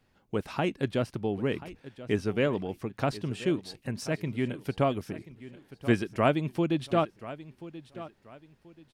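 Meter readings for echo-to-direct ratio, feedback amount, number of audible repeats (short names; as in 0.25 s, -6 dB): -15.5 dB, 30%, 2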